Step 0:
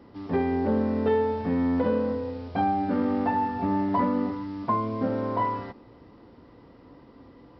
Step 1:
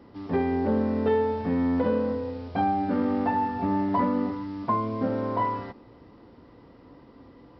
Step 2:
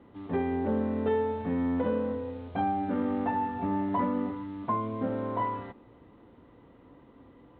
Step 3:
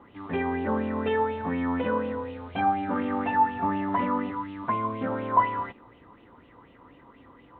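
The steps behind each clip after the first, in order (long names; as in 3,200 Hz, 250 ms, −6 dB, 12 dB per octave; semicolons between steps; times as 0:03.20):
no processing that can be heard
Butterworth low-pass 3,800 Hz 72 dB per octave; level −4 dB
auto-filter bell 4.1 Hz 980–2,900 Hz +16 dB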